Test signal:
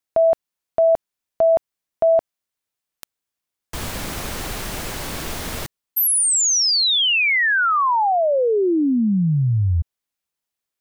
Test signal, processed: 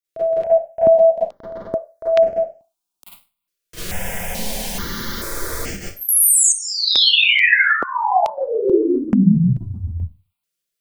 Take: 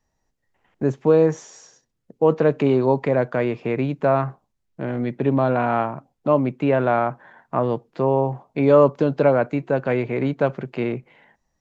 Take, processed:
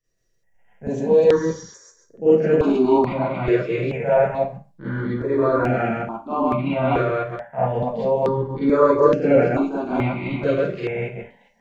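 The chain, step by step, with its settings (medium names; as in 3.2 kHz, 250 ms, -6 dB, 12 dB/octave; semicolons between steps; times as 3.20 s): chunks repeated in reverse 133 ms, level 0 dB; Schroeder reverb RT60 0.31 s, combs from 32 ms, DRR -10 dB; stepped phaser 2.3 Hz 230–3800 Hz; trim -8.5 dB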